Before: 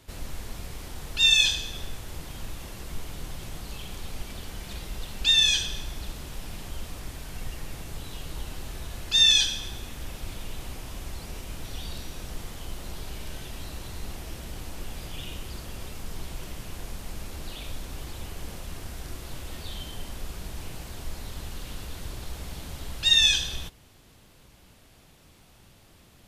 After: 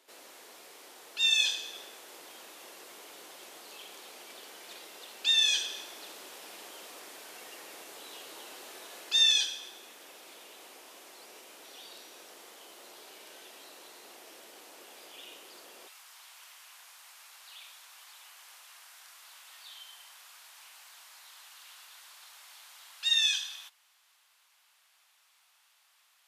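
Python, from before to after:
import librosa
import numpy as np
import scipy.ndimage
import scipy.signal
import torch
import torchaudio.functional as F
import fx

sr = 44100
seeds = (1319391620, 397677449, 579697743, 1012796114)

y = fx.rider(x, sr, range_db=10, speed_s=0.5)
y = fx.highpass(y, sr, hz=fx.steps((0.0, 360.0), (15.88, 940.0)), slope=24)
y = F.gain(torch.from_numpy(y), -1.5).numpy()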